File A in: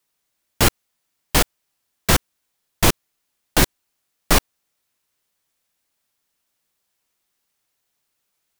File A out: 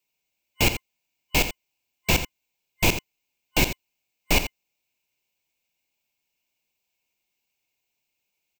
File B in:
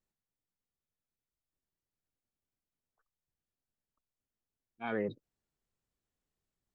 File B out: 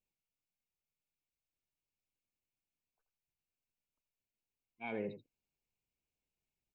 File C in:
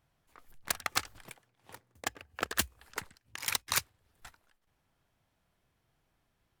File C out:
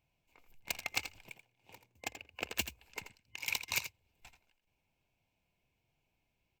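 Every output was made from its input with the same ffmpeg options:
ffmpeg -i in.wav -filter_complex "[0:a]superequalizer=10b=0.316:11b=0.447:12b=2.51:16b=0.355,asplit=2[link_01][link_02];[link_02]aecho=0:1:83:0.282[link_03];[link_01][link_03]amix=inputs=2:normalize=0,volume=-5.5dB" out.wav

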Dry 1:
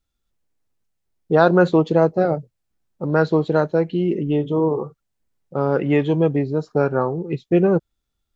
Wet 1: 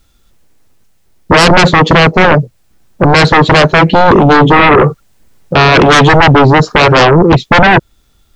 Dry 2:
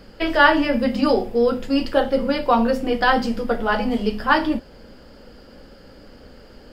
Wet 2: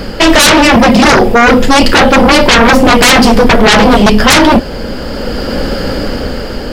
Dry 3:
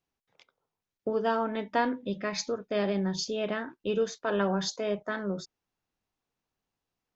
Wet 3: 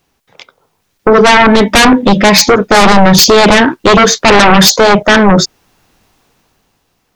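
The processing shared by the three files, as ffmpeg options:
ffmpeg -i in.wav -filter_complex "[0:a]asplit=2[link_01][link_02];[link_02]alimiter=limit=-13dB:level=0:latency=1:release=248,volume=1dB[link_03];[link_01][link_03]amix=inputs=2:normalize=0,dynaudnorm=framelen=190:gausssize=11:maxgain=10dB,aeval=exprs='0.944*sin(PI/2*6.31*val(0)/0.944)':channel_layout=same,volume=-1dB" out.wav

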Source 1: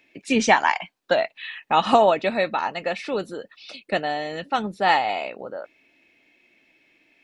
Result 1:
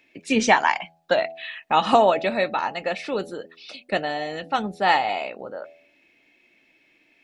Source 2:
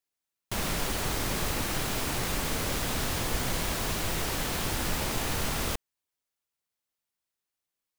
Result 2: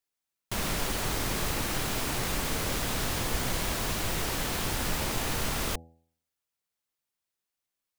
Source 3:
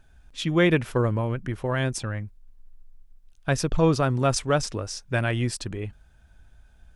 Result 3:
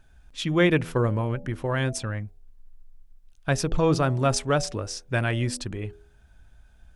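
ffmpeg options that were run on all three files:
ffmpeg -i in.wav -af "bandreject=frequency=82.34:width_type=h:width=4,bandreject=frequency=164.68:width_type=h:width=4,bandreject=frequency=247.02:width_type=h:width=4,bandreject=frequency=329.36:width_type=h:width=4,bandreject=frequency=411.7:width_type=h:width=4,bandreject=frequency=494.04:width_type=h:width=4,bandreject=frequency=576.38:width_type=h:width=4,bandreject=frequency=658.72:width_type=h:width=4,bandreject=frequency=741.06:width_type=h:width=4,bandreject=frequency=823.4:width_type=h:width=4" out.wav

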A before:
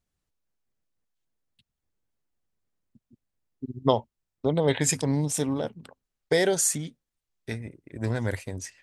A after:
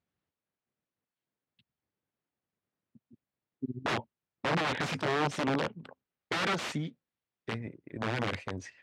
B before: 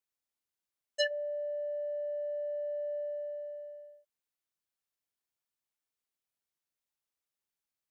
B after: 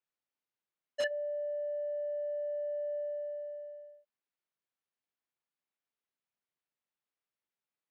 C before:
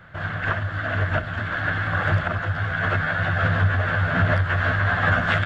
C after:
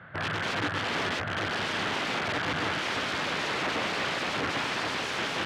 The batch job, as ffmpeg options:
ffmpeg -i in.wav -af "aeval=exprs='(mod(13.3*val(0)+1,2)-1)/13.3':channel_layout=same,highpass=120,lowpass=3100" out.wav

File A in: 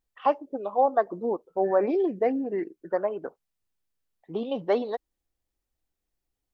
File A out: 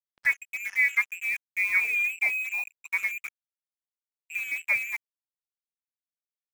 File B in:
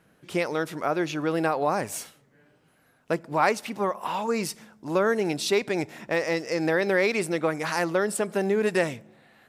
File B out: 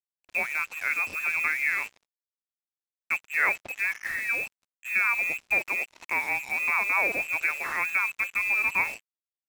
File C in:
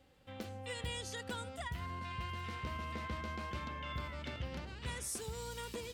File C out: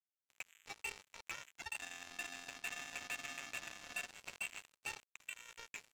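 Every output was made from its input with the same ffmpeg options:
ffmpeg -i in.wav -af "aeval=exprs='0.355*(cos(1*acos(clip(val(0)/0.355,-1,1)))-cos(1*PI/2))+0.0355*(cos(2*acos(clip(val(0)/0.355,-1,1)))-cos(2*PI/2))+0.0112*(cos(4*acos(clip(val(0)/0.355,-1,1)))-cos(4*PI/2))+0.00251*(cos(7*acos(clip(val(0)/0.355,-1,1)))-cos(7*PI/2))':channel_layout=same,lowpass=frequency=2400:width_type=q:width=0.5098,lowpass=frequency=2400:width_type=q:width=0.6013,lowpass=frequency=2400:width_type=q:width=0.9,lowpass=frequency=2400:width_type=q:width=2.563,afreqshift=-2800,acrusher=bits=5:mix=0:aa=0.5,volume=-2dB" out.wav

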